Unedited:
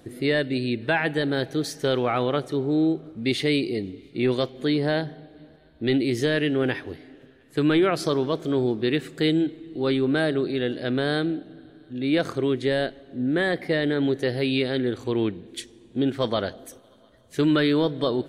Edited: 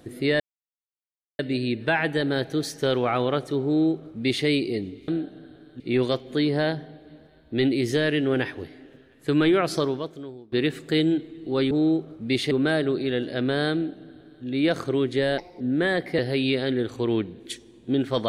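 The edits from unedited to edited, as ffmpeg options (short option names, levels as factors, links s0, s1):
-filter_complex "[0:a]asplit=10[s0][s1][s2][s3][s4][s5][s6][s7][s8][s9];[s0]atrim=end=0.4,asetpts=PTS-STARTPTS,afade=t=out:st=0.396:d=0.004:c=hsin,apad=pad_dur=0.99[s10];[s1]atrim=start=0.4:end=4.092,asetpts=PTS-STARTPTS,afade=t=in:d=0.004:c=hsin[s11];[s2]atrim=start=11.218:end=11.942[s12];[s3]atrim=start=4.088:end=8.81,asetpts=PTS-STARTPTS,afade=t=out:st=4.002:d=0.72:c=qua:silence=0.0668344[s13];[s4]atrim=start=8.81:end=10.002,asetpts=PTS-STARTPTS,afade=t=in:d=0.004:c=hsin:silence=0.0668344[s14];[s5]atrim=start=2.668:end=3.472[s15];[s6]atrim=start=9.998:end=12.874[s16];[s7]atrim=start=12.87:end=13.16,asetpts=PTS-STARTPTS,asetrate=56889,aresample=44100[s17];[s8]atrim=start=13.156:end=13.742[s18];[s9]atrim=start=14.258[s19];[s10][s11]concat=n=2:v=0:a=1[s20];[s20][s12]acrossfade=d=0.004:c1=hsin:c2=hsin[s21];[s13][s14]concat=n=2:v=0:a=1[s22];[s21][s22]acrossfade=d=0.004:c1=hsin:c2=hsin[s23];[s23][s15]acrossfade=d=0.004:c1=hsin:c2=hsin[s24];[s24][s16]acrossfade=d=0.004:c1=hsin:c2=hsin[s25];[s25][s17]acrossfade=d=0.004:c1=hsin:c2=hsin[s26];[s26][s18]acrossfade=d=0.004:c1=hsin:c2=hsin[s27];[s27][s19]acrossfade=d=0.004:c1=hsin:c2=hsin"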